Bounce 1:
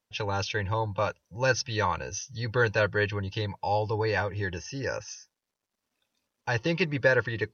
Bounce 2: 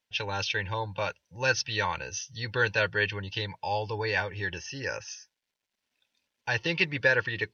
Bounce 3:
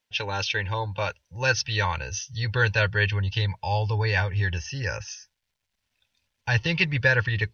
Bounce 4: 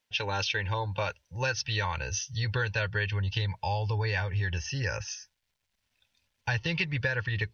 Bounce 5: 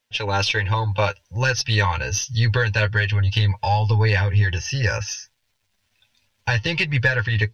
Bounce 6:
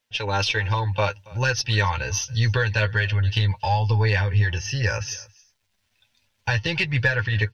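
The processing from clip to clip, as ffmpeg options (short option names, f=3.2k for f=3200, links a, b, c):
-af "equalizer=f=2.8k:t=o:w=2.2:g=10,bandreject=f=1.2k:w=6.5,volume=-5dB"
-af "asubboost=boost=9:cutoff=100,volume=3dB"
-af "acompressor=threshold=-26dB:ratio=6"
-af "dynaudnorm=f=220:g=3:m=4dB,flanger=delay=8.1:depth=2.1:regen=28:speed=1.3:shape=sinusoidal,aeval=exprs='0.237*(cos(1*acos(clip(val(0)/0.237,-1,1)))-cos(1*PI/2))+0.00668*(cos(6*acos(clip(val(0)/0.237,-1,1)))-cos(6*PI/2))':c=same,volume=8.5dB"
-af "aecho=1:1:278:0.0668,volume=-2dB"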